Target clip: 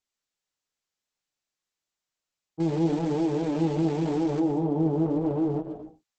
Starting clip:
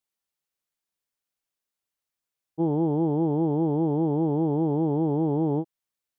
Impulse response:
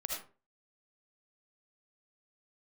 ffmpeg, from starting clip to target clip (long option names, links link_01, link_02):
-filter_complex "[0:a]flanger=delay=15.5:depth=3.2:speed=0.92,asettb=1/sr,asplit=3[link_01][link_02][link_03];[link_01]atrim=end=2.604[link_04];[link_02]atrim=start=2.6:end=4.4,asetpts=PTS-STARTPTS,afade=type=in:duration=0.004:curve=qsin,afade=type=out:start_time=1.796:duration=0.004:curve=qsin,aeval=exprs='val(0)*gte(abs(val(0)),0.0158)':channel_layout=same[link_05];[link_03]atrim=start=4.396[link_06];[link_04][link_05]acrossfade=duration=0.004:curve1=hsin:curve2=qsin[link_07];[link_07][link_06]acrossfade=duration=0.004:curve1=qsin:curve2=hsin,asplit=2[link_08][link_09];[1:a]atrim=start_sample=2205,afade=type=out:start_time=0.3:duration=0.01,atrim=end_sample=13671,adelay=128[link_10];[link_09][link_10]afir=irnorm=-1:irlink=0,volume=-10dB[link_11];[link_08][link_11]amix=inputs=2:normalize=0,volume=1.5dB" -ar 48000 -c:a libopus -b:a 10k